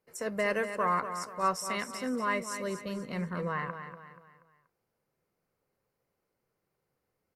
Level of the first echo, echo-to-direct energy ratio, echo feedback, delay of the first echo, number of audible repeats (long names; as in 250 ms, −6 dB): −9.5 dB, −8.5 dB, 40%, 240 ms, 4